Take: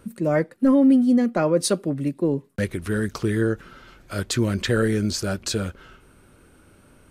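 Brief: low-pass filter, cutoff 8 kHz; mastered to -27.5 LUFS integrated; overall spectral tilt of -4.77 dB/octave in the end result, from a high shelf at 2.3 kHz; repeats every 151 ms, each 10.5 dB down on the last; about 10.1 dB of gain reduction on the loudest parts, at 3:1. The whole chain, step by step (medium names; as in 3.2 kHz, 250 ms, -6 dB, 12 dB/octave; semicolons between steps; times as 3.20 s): low-pass 8 kHz; treble shelf 2.3 kHz +5.5 dB; compression 3:1, threshold -27 dBFS; feedback delay 151 ms, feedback 30%, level -10.5 dB; trim +1.5 dB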